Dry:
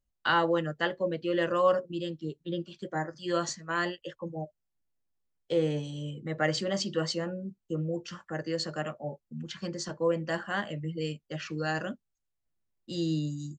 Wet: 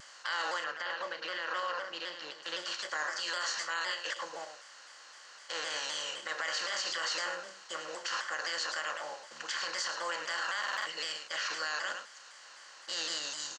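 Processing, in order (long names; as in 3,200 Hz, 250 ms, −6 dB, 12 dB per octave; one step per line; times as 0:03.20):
compressor on every frequency bin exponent 0.4
high-pass filter 1,400 Hz 12 dB per octave
parametric band 3,700 Hz −2.5 dB 0.21 octaves
on a send: single-tap delay 104 ms −10 dB
on the sum: brickwall limiter −24.5 dBFS, peak gain reduction 11 dB
0:00.64–0:02.43: high-frequency loss of the air 150 metres
buffer that repeats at 0:10.59, samples 2,048, times 5
pitch modulation by a square or saw wave saw down 3.9 Hz, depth 100 cents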